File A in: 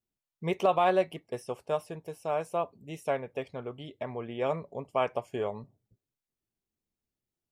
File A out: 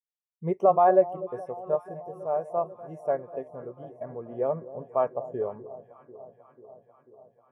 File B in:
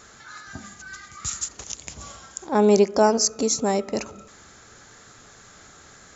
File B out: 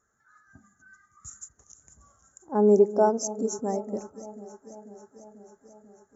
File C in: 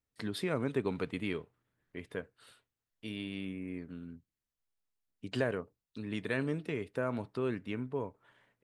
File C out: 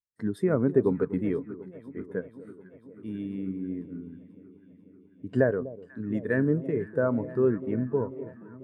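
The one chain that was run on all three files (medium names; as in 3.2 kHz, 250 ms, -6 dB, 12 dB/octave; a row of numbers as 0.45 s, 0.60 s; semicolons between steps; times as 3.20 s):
high-order bell 3.3 kHz -10 dB 1.3 oct; echo whose repeats swap between lows and highs 246 ms, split 920 Hz, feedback 87%, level -11 dB; spectral contrast expander 1.5:1; peak normalisation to -9 dBFS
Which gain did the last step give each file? +4.0 dB, -4.0 dB, +9.5 dB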